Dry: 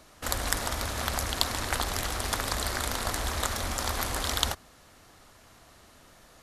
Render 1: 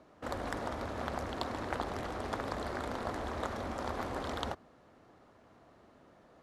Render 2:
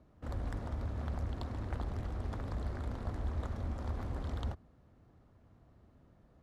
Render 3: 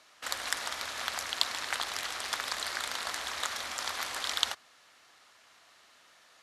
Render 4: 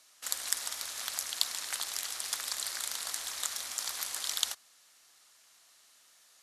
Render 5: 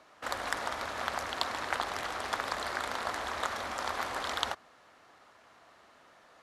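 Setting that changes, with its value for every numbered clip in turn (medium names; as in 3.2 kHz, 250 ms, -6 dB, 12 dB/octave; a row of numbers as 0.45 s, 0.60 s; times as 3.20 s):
band-pass filter, frequency: 360 Hz, 100 Hz, 2.8 kHz, 7.7 kHz, 1.1 kHz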